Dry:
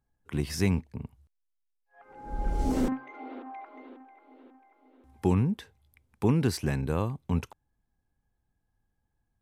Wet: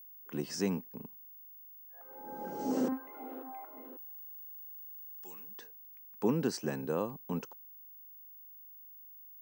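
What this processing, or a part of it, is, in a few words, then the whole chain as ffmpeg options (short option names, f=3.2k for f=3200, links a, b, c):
old television with a line whistle: -filter_complex "[0:a]highpass=f=180:w=0.5412,highpass=f=180:w=1.3066,equalizer=f=500:t=q:w=4:g=5,equalizer=f=2.2k:t=q:w=4:g=-9,equalizer=f=3.6k:t=q:w=4:g=-7,equalizer=f=6k:t=q:w=4:g=4,lowpass=f=8.2k:w=0.5412,lowpass=f=8.2k:w=1.3066,aeval=exprs='val(0)+0.00501*sin(2*PI*15625*n/s)':c=same,asettb=1/sr,asplit=3[a][b][c];[a]atrim=end=3.974[d];[b]atrim=start=3.97:end=5.59,asetpts=PTS-STARTPTS,afade=t=in:d=0.004:c=qsin,afade=t=out:st=1.616:d=0.004:c=qsin,aderivative[e];[c]atrim=start=5.586[f];[d][e]acrossfade=d=0.004:c1=hsin:c2=qsin[g];[g][f]acrossfade=d=0.004:c1=qsin:c2=hsin,volume=-4dB"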